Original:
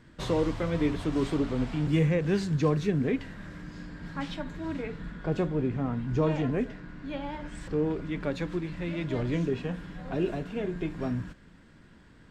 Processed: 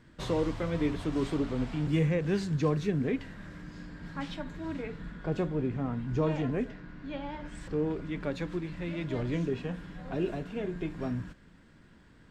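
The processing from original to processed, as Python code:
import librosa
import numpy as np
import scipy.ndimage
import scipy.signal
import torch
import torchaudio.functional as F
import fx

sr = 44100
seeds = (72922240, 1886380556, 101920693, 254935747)

y = fx.lowpass(x, sr, hz=7000.0, slope=12, at=(6.71, 7.45))
y = F.gain(torch.from_numpy(y), -2.5).numpy()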